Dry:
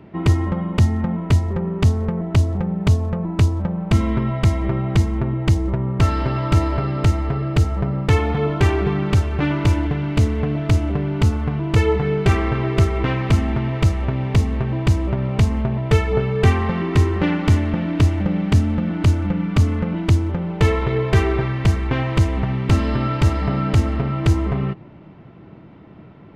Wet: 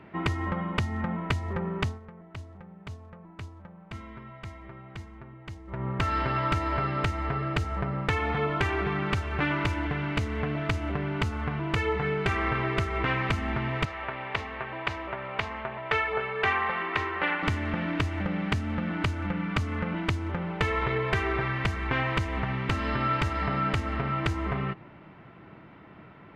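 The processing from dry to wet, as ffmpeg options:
ffmpeg -i in.wav -filter_complex "[0:a]asettb=1/sr,asplit=3[link_01][link_02][link_03];[link_01]atrim=end=13.854[link_04];[link_02]atrim=start=13.85:end=17.43,asetpts=PTS-STARTPTS,afade=type=in:duration=0.004:curve=qsin,afade=type=out:start_time=3.576:duration=0.004:curve=qsin,acrossover=split=430 4200:gain=0.158 1 0.141[link_05][link_06][link_07];[link_05][link_06][link_07]amix=inputs=3:normalize=0[link_08];[link_03]atrim=start=17.426[link_09];[link_04][link_08]acrossfade=duration=0.004:curve1=hsin:curve2=qsin[link_10];[link_10][link_09]acrossfade=duration=0.004:curve1=qsin:curve2=hsin,asplit=3[link_11][link_12][link_13];[link_11]atrim=end=2,asetpts=PTS-STARTPTS,afade=type=out:start_time=1.8:duration=0.2:silence=0.141254[link_14];[link_12]atrim=start=2:end=5.67,asetpts=PTS-STARTPTS,volume=-17dB[link_15];[link_13]atrim=start=5.67,asetpts=PTS-STARTPTS,afade=type=in:duration=0.2:silence=0.141254[link_16];[link_14][link_15][link_16]concat=n=3:v=0:a=1,acompressor=threshold=-17dB:ratio=6,equalizer=frequency=1700:width_type=o:width=2.4:gain=12,volume=-9dB" out.wav

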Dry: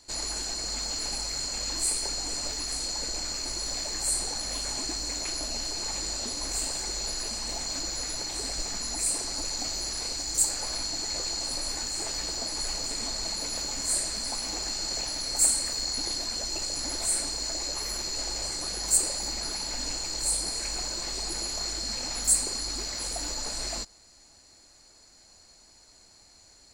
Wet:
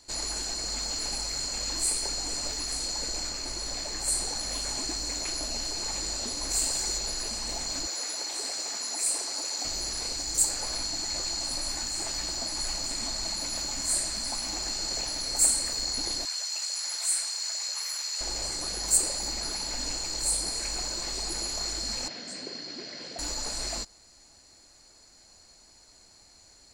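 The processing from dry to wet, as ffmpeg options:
ffmpeg -i in.wav -filter_complex "[0:a]asettb=1/sr,asplit=3[link_01][link_02][link_03];[link_01]atrim=end=3.294[link_04];[link_02]atrim=start=3.29:end=4.08,asetpts=PTS-STARTPTS,afade=type=in:duration=0.004:curve=qsin,afade=type=out:start_time=0.786:duration=0.004:curve=qsin,highshelf=frequency=5600:gain=-4.5[link_05];[link_03]atrim=start=4.076[link_06];[link_04][link_05]acrossfade=duration=0.004:curve1=hsin:curve2=qsin[link_07];[link_07][link_06]acrossfade=duration=0.004:curve1=qsin:curve2=hsin,asettb=1/sr,asplit=3[link_08][link_09][link_10];[link_08]atrim=end=6.504[link_11];[link_09]atrim=start=6.5:end=6.98,asetpts=PTS-STARTPTS,afade=type=in:duration=0.004:curve=qsin,afade=type=out:start_time=0.476:duration=0.004:curve=qsin,highshelf=frequency=5500:gain=6[link_12];[link_10]atrim=start=6.976[link_13];[link_11][link_12]acrossfade=duration=0.004:curve1=hsin:curve2=qsin[link_14];[link_14][link_13]acrossfade=duration=0.004:curve1=qsin:curve2=hsin,asettb=1/sr,asplit=3[link_15][link_16][link_17];[link_15]atrim=end=7.874[link_18];[link_16]atrim=start=7.87:end=9.65,asetpts=PTS-STARTPTS,afade=type=in:duration=0.004:curve=qsin,afade=type=out:start_time=1.776:duration=0.004:curve=qsin,highpass=380[link_19];[link_17]atrim=start=9.646[link_20];[link_18][link_19]acrossfade=duration=0.004:curve1=hsin:curve2=qsin[link_21];[link_21][link_20]acrossfade=duration=0.004:curve1=qsin:curve2=hsin,asettb=1/sr,asplit=3[link_22][link_23][link_24];[link_22]atrim=end=10.874[link_25];[link_23]atrim=start=10.87:end=14.64,asetpts=PTS-STARTPTS,afade=type=in:duration=0.004:curve=qsin,afade=type=out:start_time=3.766:duration=0.004:curve=qsin,equalizer=frequency=460:width_type=o:width=0.2:gain=-12.5[link_26];[link_24]atrim=start=14.636[link_27];[link_25][link_26]acrossfade=duration=0.004:curve1=hsin:curve2=qsin[link_28];[link_28][link_27]acrossfade=duration=0.004:curve1=qsin:curve2=hsin,asettb=1/sr,asplit=3[link_29][link_30][link_31];[link_29]atrim=end=16.254[link_32];[link_30]atrim=start=16.25:end=18.21,asetpts=PTS-STARTPTS,afade=type=in:duration=0.004:curve=qsin,afade=type=out:start_time=1.956:duration=0.004:curve=qsin,highpass=1200[link_33];[link_31]atrim=start=18.206[link_34];[link_32][link_33]acrossfade=duration=0.004:curve1=hsin:curve2=qsin[link_35];[link_35][link_34]acrossfade=duration=0.004:curve1=qsin:curve2=hsin,asettb=1/sr,asplit=3[link_36][link_37][link_38];[link_36]atrim=end=22.084[link_39];[link_37]atrim=start=22.08:end=23.19,asetpts=PTS-STARTPTS,afade=type=in:duration=0.004:curve=qsin,afade=type=out:start_time=1.106:duration=0.004:curve=qsin,highpass=frequency=140:width=0.5412,highpass=frequency=140:width=1.3066,equalizer=frequency=850:width_type=q:width=4:gain=-10,equalizer=frequency=1200:width_type=q:width=4:gain=-10,equalizer=frequency=2400:width_type=q:width=4:gain=-4,equalizer=frequency=3800:width_type=q:width=4:gain=-5,lowpass=frequency=4400:width=0.5412,lowpass=frequency=4400:width=1.3066[link_40];[link_38]atrim=start=23.186[link_41];[link_39][link_40]acrossfade=duration=0.004:curve1=hsin:curve2=qsin[link_42];[link_42][link_41]acrossfade=duration=0.004:curve1=qsin:curve2=hsin" out.wav

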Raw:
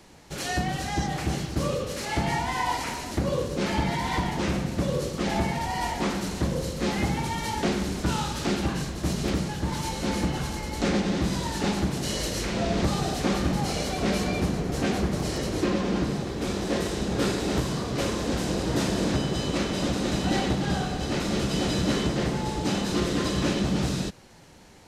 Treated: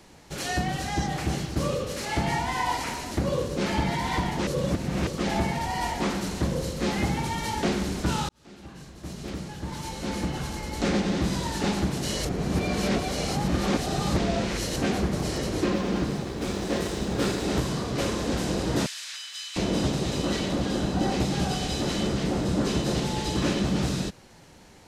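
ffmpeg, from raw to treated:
ffmpeg -i in.wav -filter_complex "[0:a]asettb=1/sr,asplit=3[link_01][link_02][link_03];[link_01]atrim=end=15.734[link_04];[link_02]atrim=start=15.73:end=17.44,asetpts=PTS-STARTPTS,afade=type=in:duration=0.004:curve=qsin,afade=type=out:start_time=1.706:duration=0.004:curve=qsin,aeval=exprs='sgn(val(0))*max(abs(val(0))-0.00473,0)':channel_layout=same[link_05];[link_03]atrim=start=17.436[link_06];[link_04][link_05]acrossfade=duration=0.004:curve1=hsin:curve2=qsin[link_07];[link_07][link_06]acrossfade=duration=0.004:curve1=qsin:curve2=hsin,asettb=1/sr,asplit=3[link_08][link_09][link_10];[link_08]atrim=end=18.864[link_11];[link_09]atrim=start=18.86:end=23.37,asetpts=PTS-STARTPTS,afade=type=in:duration=0.004:curve=qsin,afade=type=out:start_time=4.506:duration=0.004:curve=qsin,acrossover=split=1700[link_12][link_13];[link_12]adelay=700[link_14];[link_14][link_13]amix=inputs=2:normalize=0,atrim=end_sample=198891[link_15];[link_10]atrim=start=23.366[link_16];[link_11][link_15]acrossfade=duration=0.004:curve1=hsin:curve2=qsin[link_17];[link_17][link_16]acrossfade=duration=0.004:curve1=qsin:curve2=hsin,asplit=6[link_18][link_19][link_20][link_21][link_22][link_23];[link_18]atrim=end=4.472[link_24];[link_19]atrim=start=4.468:end=5.072,asetpts=PTS-STARTPTS,areverse[link_25];[link_20]atrim=start=5.068:end=8.29,asetpts=PTS-STARTPTS,afade=type=out:start_time=3.218:duration=0.004:curve=hsin[link_26];[link_21]atrim=start=8.29:end=12.252,asetpts=PTS-STARTPTS,afade=type=in:duration=2.68[link_27];[link_22]atrim=start=12.248:end=14.762,asetpts=PTS-STARTPTS,areverse[link_28];[link_23]atrim=start=14.758[link_29];[link_24][link_25]acrossfade=duration=0.004:curve1=hsin:curve2=hsin[link_30];[link_26][link_27]concat=n=2:v=0:a=1[link_31];[link_30][link_31]acrossfade=duration=0.004:curve1=hsin:curve2=hsin[link_32];[link_32][link_28]acrossfade=duration=0.004:curve1=hsin:curve2=hsin[link_33];[link_33][link_29]acrossfade=duration=0.004:curve1=hsin:curve2=hsin" out.wav

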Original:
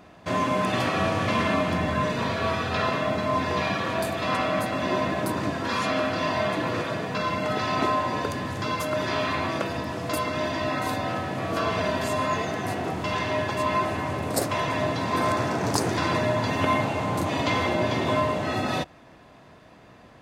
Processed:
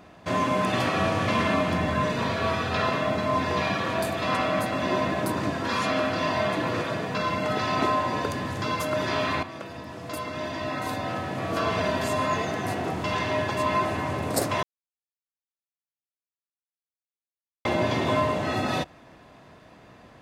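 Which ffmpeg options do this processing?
ffmpeg -i in.wav -filter_complex "[0:a]asplit=4[link_01][link_02][link_03][link_04];[link_01]atrim=end=9.43,asetpts=PTS-STARTPTS,afade=type=out:start_time=9.426:duration=0.004:curve=hsin:silence=0.251189[link_05];[link_02]atrim=start=9.43:end=14.63,asetpts=PTS-STARTPTS,afade=type=in:duration=2.28:silence=0.251189,afade=type=out:start_time=5.196:duration=0.004:curve=hsin[link_06];[link_03]atrim=start=14.63:end=17.65,asetpts=PTS-STARTPTS,volume=0[link_07];[link_04]atrim=start=17.65,asetpts=PTS-STARTPTS,afade=type=in:duration=0.004:curve=hsin[link_08];[link_05][link_06][link_07][link_08]concat=n=4:v=0:a=1" out.wav

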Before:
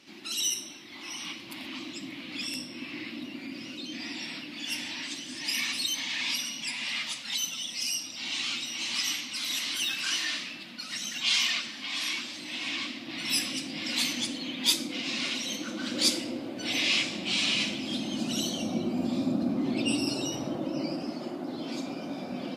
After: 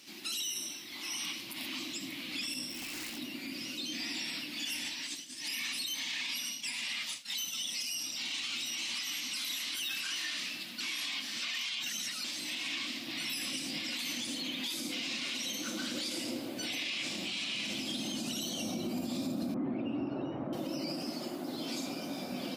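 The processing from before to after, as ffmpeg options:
ffmpeg -i in.wav -filter_complex "[0:a]asplit=3[link_01][link_02][link_03];[link_01]afade=type=out:start_time=2.69:duration=0.02[link_04];[link_02]aeval=exprs='0.015*(abs(mod(val(0)/0.015+3,4)-2)-1)':channel_layout=same,afade=type=in:start_time=2.69:duration=0.02,afade=type=out:start_time=3.17:duration=0.02[link_05];[link_03]afade=type=in:start_time=3.17:duration=0.02[link_06];[link_04][link_05][link_06]amix=inputs=3:normalize=0,asplit=3[link_07][link_08][link_09];[link_07]afade=type=out:start_time=4.88:duration=0.02[link_10];[link_08]agate=range=-33dB:threshold=-33dB:ratio=3:release=100:detection=peak,afade=type=in:start_time=4.88:duration=0.02,afade=type=out:start_time=7.54:duration=0.02[link_11];[link_09]afade=type=in:start_time=7.54:duration=0.02[link_12];[link_10][link_11][link_12]amix=inputs=3:normalize=0,asettb=1/sr,asplit=3[link_13][link_14][link_15];[link_13]atrim=end=19.544[link_16];[link_14]atrim=start=19.54:end=20.53,asetpts=PTS-STARTPTS,afade=type=in:duration=0.004:curve=qsin,afade=type=out:start_time=0.986:duration=0.004:curve=qsin,lowpass=frequency=1700:width=0.5412,lowpass=frequency=1700:width=1.3066[link_17];[link_15]atrim=start=20.526[link_18];[link_16][link_17]acrossfade=duration=0.004:curve1=hsin:curve2=qsin[link_19];[link_19][link_18]acrossfade=duration=0.004:curve1=qsin:curve2=hsin,asplit=3[link_20][link_21][link_22];[link_20]atrim=end=10.802[link_23];[link_21]atrim=start=10.798:end=12.242,asetpts=PTS-STARTPTS,areverse[link_24];[link_22]atrim=start=12.238[link_25];[link_23][link_24]acrossfade=duration=0.004:curve1=hsin:curve2=hsin[link_26];[link_26][link_25]acrossfade=duration=0.004:curve1=hsin:curve2=hsin,acrossover=split=3700[link_27][link_28];[link_28]acompressor=threshold=-43dB:ratio=4:attack=1:release=60[link_29];[link_27][link_29]amix=inputs=2:normalize=0,aemphasis=mode=production:type=75fm,alimiter=level_in=1dB:limit=-24dB:level=0:latency=1:release=52,volume=-1dB,volume=-2.5dB" out.wav

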